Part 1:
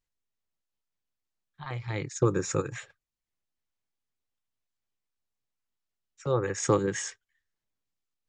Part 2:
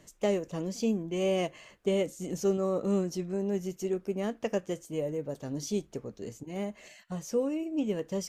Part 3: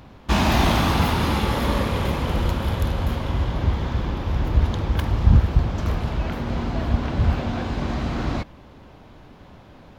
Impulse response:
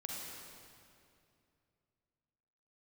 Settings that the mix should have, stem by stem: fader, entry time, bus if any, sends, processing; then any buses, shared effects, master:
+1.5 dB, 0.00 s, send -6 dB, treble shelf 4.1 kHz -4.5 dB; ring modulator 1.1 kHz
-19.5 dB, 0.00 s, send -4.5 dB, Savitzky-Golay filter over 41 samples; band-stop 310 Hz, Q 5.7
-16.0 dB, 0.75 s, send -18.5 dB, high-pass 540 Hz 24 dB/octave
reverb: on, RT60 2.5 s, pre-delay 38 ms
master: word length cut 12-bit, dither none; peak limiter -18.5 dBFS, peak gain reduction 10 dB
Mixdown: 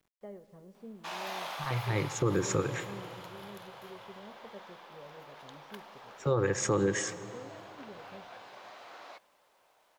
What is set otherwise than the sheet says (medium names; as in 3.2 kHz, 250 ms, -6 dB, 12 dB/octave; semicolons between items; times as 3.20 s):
stem 1: missing ring modulator 1.1 kHz; reverb return -7.5 dB